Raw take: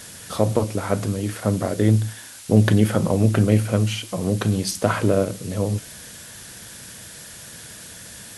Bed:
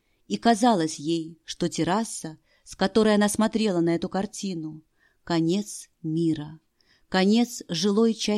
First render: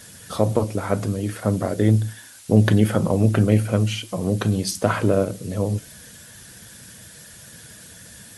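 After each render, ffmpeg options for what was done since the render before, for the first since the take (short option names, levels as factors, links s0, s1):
-af "afftdn=nr=6:nf=-41"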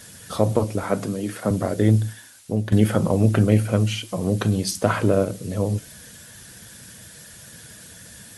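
-filter_complex "[0:a]asettb=1/sr,asplit=3[s0][s1][s2];[s0]atrim=end=0.834[s3];[s1]atrim=start=0.83:end=1.51,asetpts=PTS-STARTPTS,afade=t=in:d=0.004:c=qsin,afade=t=out:st=0.676:d=0.004:c=qsin,highpass=f=130:w=0.5412,highpass=f=130:w=1.3066[s4];[s2]atrim=start=1.506[s5];[s3][s4]acrossfade=d=0.004:c1=hsin:c2=qsin[s6];[s6][s5]acrossfade=d=0.004:c1=qsin:c2=hsin,asplit=2[s7][s8];[s7]atrim=end=2.72,asetpts=PTS-STARTPTS,afade=t=out:st=2.06:d=0.66:silence=0.199526[s9];[s8]atrim=start=2.72,asetpts=PTS-STARTPTS,afade=t=in:d=0.004:c=hsin:silence=0.199526[s10];[s9][s10]concat=n=2:v=0:a=1"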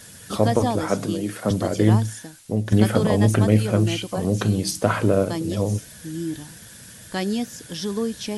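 -filter_complex "[1:a]volume=0.596[s0];[0:a][s0]amix=inputs=2:normalize=0"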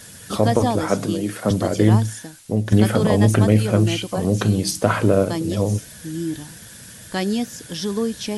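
-af "volume=1.33,alimiter=limit=0.708:level=0:latency=1"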